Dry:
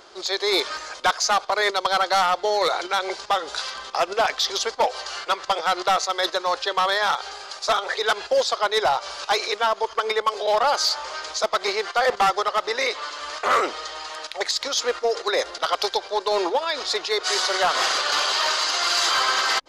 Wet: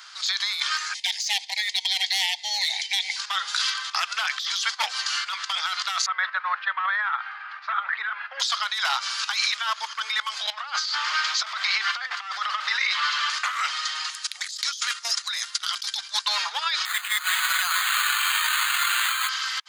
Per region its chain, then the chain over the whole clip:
0.94–3.16 elliptic band-stop 860–1900 Hz, stop band 50 dB + bell 520 Hz -9.5 dB 0.75 oct + hard clip -17 dBFS
6.06–8.4 LPF 1900 Hz 24 dB/oct + tilt +2 dB/oct
10.5–13.3 zero-crossing step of -36.5 dBFS + air absorption 130 m + negative-ratio compressor -25 dBFS, ratio -0.5
14.1–16.26 HPF 600 Hz + bell 9500 Hz +13.5 dB 1.7 oct + gate -28 dBFS, range -11 dB
16.85–19.29 BPF 800–2600 Hz + careless resampling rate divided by 8×, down none, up hold
whole clip: inverse Chebyshev high-pass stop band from 290 Hz, stop band 70 dB; dynamic EQ 3200 Hz, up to +4 dB, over -40 dBFS, Q 6.5; negative-ratio compressor -29 dBFS, ratio -1; gain +4 dB

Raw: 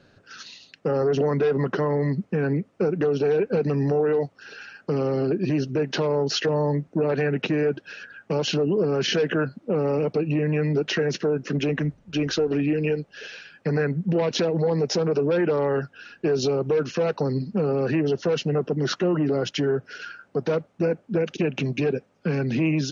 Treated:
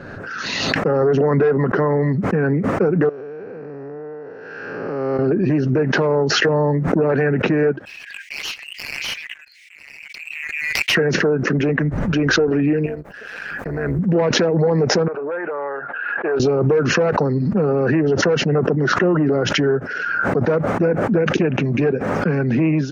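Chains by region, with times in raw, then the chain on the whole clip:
3.09–5.19 time blur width 0.399 s + HPF 370 Hz 6 dB/oct + compressor 3:1, threshold -39 dBFS
7.85–10.95 steep high-pass 2100 Hz 72 dB/oct + sample leveller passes 2
12.86–13.99 G.711 law mismatch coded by A + compressor 1.5:1, threshold -34 dBFS + AM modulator 210 Hz, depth 55%
15.08–16.4 BPF 730–3500 Hz + air absorption 490 m
whole clip: resonant high shelf 2400 Hz -10 dB, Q 1.5; backwards sustainer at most 24 dB/s; gain +5 dB

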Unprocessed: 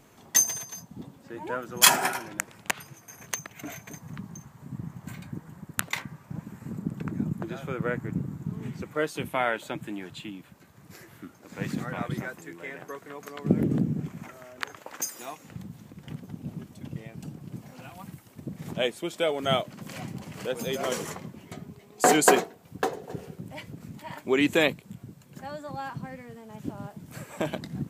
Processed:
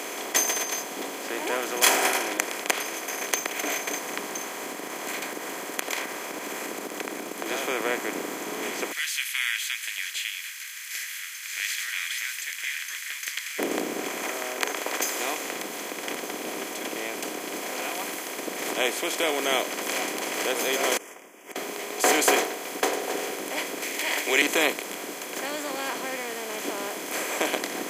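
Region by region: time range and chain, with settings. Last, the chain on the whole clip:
4.58–7.46 compressor, threshold -38 dBFS + companded quantiser 8-bit
8.92–13.59 steep high-pass 1700 Hz 72 dB/oct + dynamic EQ 3700 Hz, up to +5 dB, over -54 dBFS, Q 0.95
20.97–21.56 Butterworth band-stop 4100 Hz, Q 1.3 + flipped gate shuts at -39 dBFS, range -42 dB
23.82–24.42 HPF 310 Hz 24 dB/oct + resonant high shelf 1600 Hz +8 dB, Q 3
whole clip: per-bin compression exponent 0.4; HPF 290 Hz 24 dB/oct; gain -6 dB

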